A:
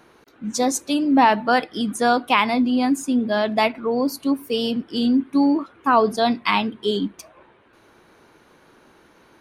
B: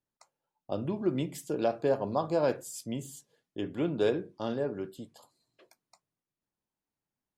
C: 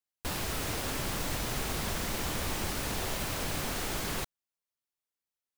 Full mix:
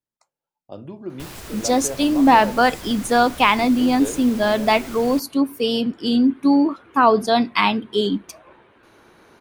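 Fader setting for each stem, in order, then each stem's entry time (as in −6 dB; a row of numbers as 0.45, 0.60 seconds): +2.0, −3.5, −3.5 decibels; 1.10, 0.00, 0.95 seconds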